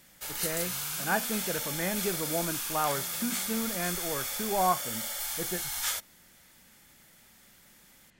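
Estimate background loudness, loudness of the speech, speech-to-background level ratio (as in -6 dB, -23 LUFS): -32.0 LUFS, -34.0 LUFS, -2.0 dB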